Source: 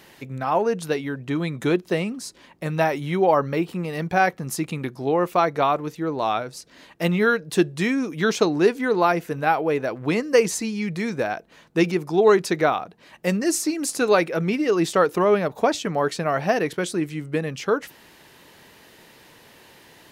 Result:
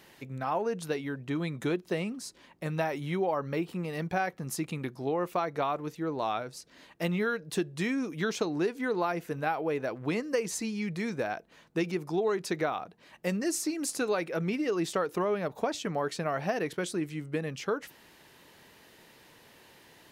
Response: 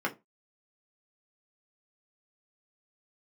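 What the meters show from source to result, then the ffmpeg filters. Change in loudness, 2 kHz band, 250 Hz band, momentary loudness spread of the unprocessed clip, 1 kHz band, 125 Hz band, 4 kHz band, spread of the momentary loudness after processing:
-9.5 dB, -9.5 dB, -8.5 dB, 9 LU, -10.5 dB, -7.5 dB, -8.5 dB, 6 LU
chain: -af "acompressor=threshold=-19dB:ratio=5,volume=-6.5dB"

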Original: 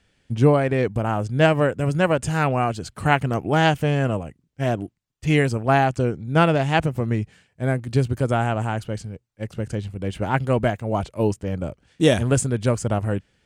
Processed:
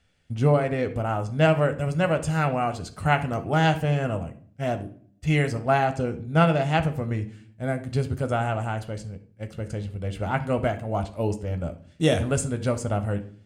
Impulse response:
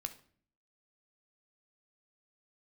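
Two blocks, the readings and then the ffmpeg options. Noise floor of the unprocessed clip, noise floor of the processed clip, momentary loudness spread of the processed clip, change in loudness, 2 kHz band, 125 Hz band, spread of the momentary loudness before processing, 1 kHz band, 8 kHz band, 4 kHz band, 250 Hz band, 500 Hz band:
-68 dBFS, -56 dBFS, 11 LU, -3.5 dB, -4.0 dB, -3.0 dB, 12 LU, -3.0 dB, -4.0 dB, -4.0 dB, -4.0 dB, -3.5 dB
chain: -filter_complex "[1:a]atrim=start_sample=2205[a];[0:a][a]afir=irnorm=-1:irlink=0,volume=-2dB"

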